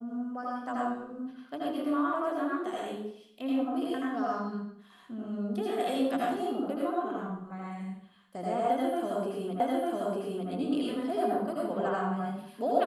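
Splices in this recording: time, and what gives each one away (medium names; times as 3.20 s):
9.60 s: repeat of the last 0.9 s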